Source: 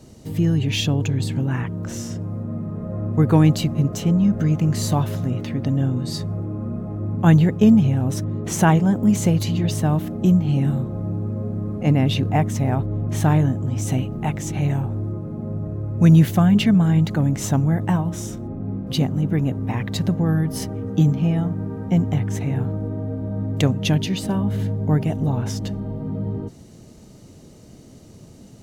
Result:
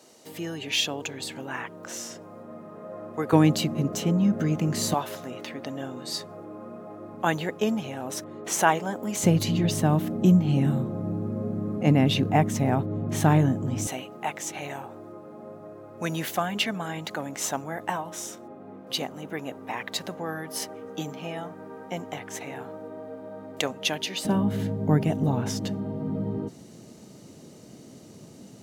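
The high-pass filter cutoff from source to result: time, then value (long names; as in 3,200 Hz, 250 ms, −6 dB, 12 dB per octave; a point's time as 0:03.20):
540 Hz
from 0:03.33 230 Hz
from 0:04.94 510 Hz
from 0:09.23 160 Hz
from 0:13.87 570 Hz
from 0:24.25 160 Hz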